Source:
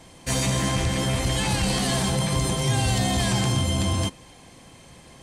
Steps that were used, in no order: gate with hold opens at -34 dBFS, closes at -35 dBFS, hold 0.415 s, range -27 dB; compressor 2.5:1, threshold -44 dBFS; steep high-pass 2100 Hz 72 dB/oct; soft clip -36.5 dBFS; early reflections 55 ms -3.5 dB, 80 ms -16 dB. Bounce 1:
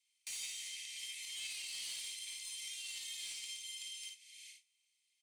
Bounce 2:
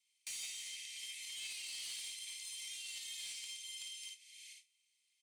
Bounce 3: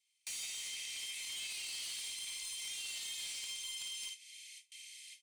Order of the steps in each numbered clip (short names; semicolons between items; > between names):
compressor > gate with hold > steep high-pass > soft clip > early reflections; gate with hold > early reflections > compressor > steep high-pass > soft clip; early reflections > gate with hold > steep high-pass > compressor > soft clip